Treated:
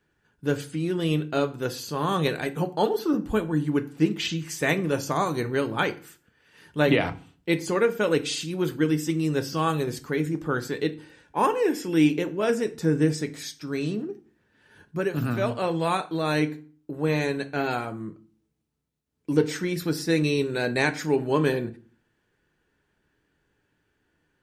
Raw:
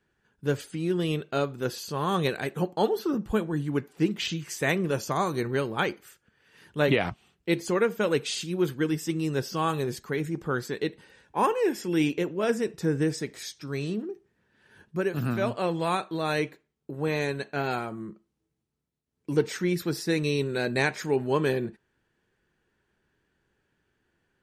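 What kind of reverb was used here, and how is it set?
feedback delay network reverb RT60 0.41 s, low-frequency decay 1.4×, high-frequency decay 0.8×, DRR 9.5 dB
level +1.5 dB

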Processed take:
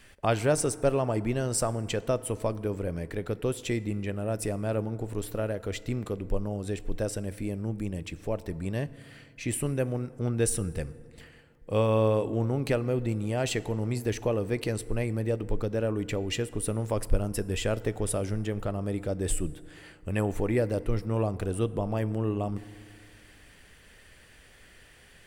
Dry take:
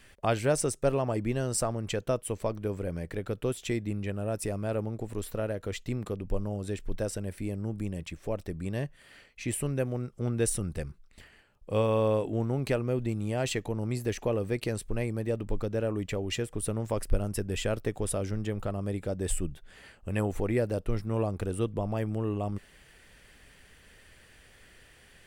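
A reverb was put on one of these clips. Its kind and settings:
feedback delay network reverb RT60 2.3 s, high-frequency decay 0.45×, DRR 16 dB
level +1.5 dB

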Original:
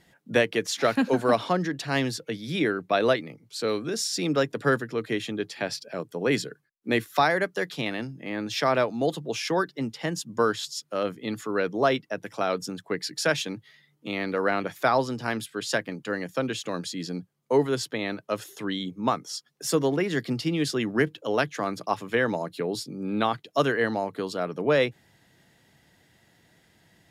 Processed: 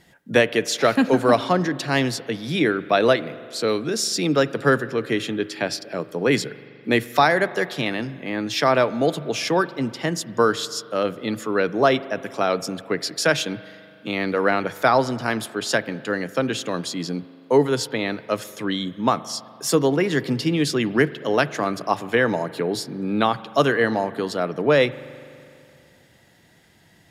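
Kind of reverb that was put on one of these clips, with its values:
spring reverb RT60 2.6 s, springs 41 ms, chirp 55 ms, DRR 16.5 dB
level +5 dB

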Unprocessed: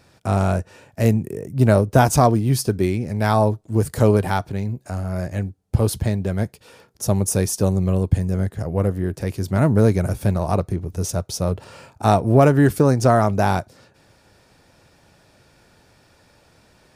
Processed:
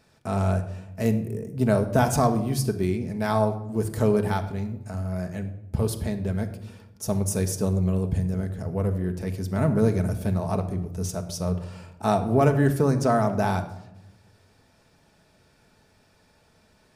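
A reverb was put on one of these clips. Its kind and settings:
rectangular room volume 3,000 cubic metres, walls furnished, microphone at 1.5 metres
level −7 dB

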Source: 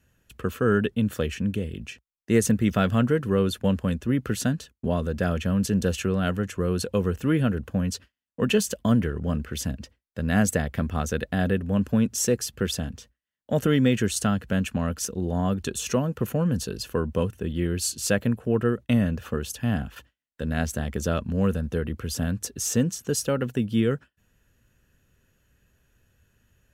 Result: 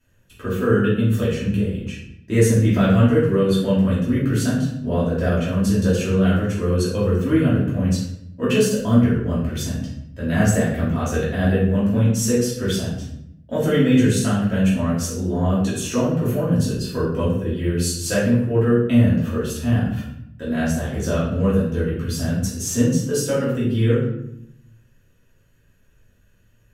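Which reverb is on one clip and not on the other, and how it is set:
rectangular room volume 180 cubic metres, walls mixed, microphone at 2.8 metres
level −6 dB

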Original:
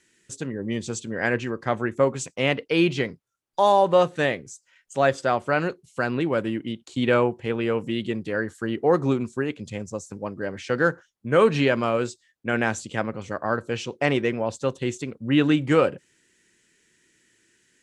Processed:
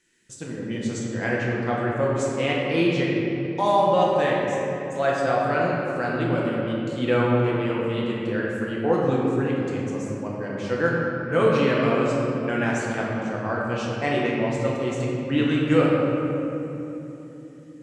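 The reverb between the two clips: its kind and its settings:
rectangular room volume 180 cubic metres, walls hard, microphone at 0.76 metres
level −5.5 dB

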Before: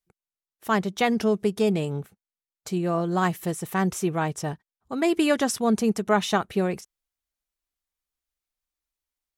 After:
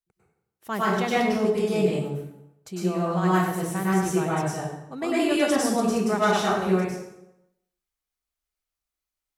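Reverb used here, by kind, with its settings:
dense smooth reverb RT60 0.86 s, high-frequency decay 0.75×, pre-delay 90 ms, DRR −8 dB
level −7.5 dB

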